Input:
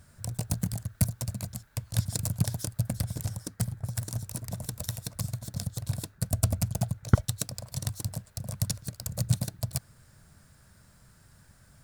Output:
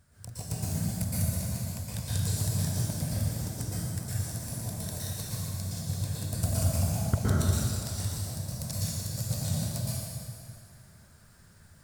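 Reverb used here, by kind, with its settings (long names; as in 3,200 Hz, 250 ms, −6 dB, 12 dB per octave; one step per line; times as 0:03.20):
dense smooth reverb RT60 2.3 s, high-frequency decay 0.9×, pre-delay 105 ms, DRR −9.5 dB
level −8.5 dB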